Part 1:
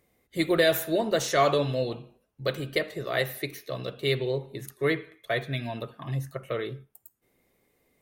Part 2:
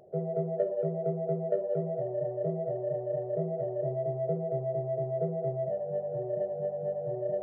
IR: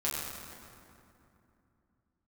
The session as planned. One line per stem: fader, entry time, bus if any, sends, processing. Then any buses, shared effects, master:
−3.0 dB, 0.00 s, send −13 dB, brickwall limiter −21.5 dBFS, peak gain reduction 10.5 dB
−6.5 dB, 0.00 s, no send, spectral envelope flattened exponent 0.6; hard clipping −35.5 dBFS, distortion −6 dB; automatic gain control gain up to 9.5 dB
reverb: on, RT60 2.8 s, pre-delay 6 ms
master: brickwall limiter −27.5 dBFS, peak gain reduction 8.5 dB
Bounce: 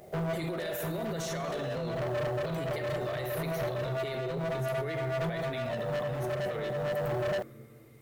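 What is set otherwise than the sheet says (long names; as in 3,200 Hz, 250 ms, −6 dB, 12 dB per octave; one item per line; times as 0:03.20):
stem 1 −3.0 dB → +5.0 dB
stem 2 −6.5 dB → +5.0 dB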